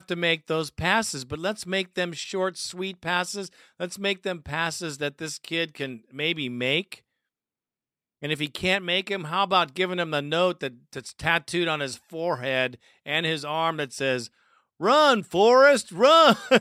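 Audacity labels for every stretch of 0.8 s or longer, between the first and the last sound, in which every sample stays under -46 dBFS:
6.980000	8.220000	silence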